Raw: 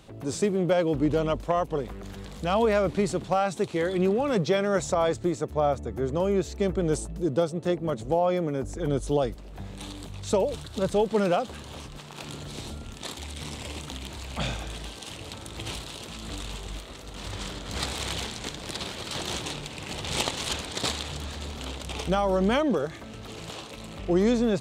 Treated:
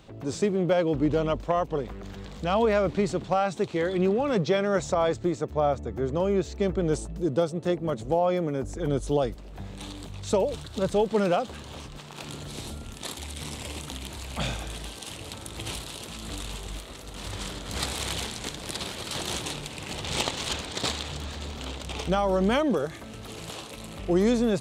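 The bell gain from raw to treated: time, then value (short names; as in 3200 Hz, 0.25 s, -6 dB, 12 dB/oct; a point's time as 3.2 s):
bell 11000 Hz 0.63 oct
6.88 s -12.5 dB
7.29 s -2.5 dB
11.94 s -2.5 dB
12.69 s +7 dB
19.72 s +7 dB
20.21 s -3.5 dB
22.11 s -3.5 dB
22.84 s +8.5 dB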